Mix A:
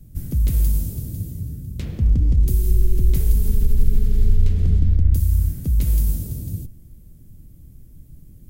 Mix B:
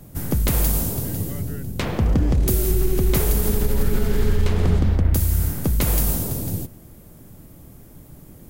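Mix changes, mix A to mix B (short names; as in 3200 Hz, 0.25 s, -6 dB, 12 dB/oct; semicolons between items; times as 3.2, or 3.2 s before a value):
background -10.5 dB; master: remove passive tone stack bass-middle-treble 10-0-1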